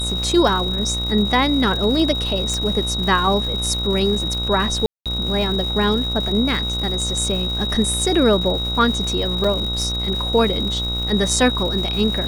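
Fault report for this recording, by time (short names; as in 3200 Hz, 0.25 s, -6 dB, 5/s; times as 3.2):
buzz 60 Hz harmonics 24 -26 dBFS
crackle 280/s -28 dBFS
tone 3800 Hz -23 dBFS
2.54 pop -11 dBFS
4.86–5.06 gap 0.197 s
9.44 gap 4.7 ms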